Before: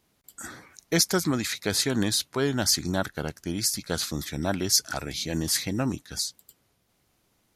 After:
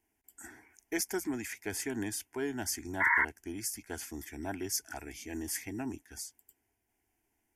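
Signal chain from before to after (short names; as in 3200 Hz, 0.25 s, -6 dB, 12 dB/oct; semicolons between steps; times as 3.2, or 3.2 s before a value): painted sound noise, 3–3.25, 880–2200 Hz -17 dBFS; fixed phaser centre 810 Hz, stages 8; gain -7 dB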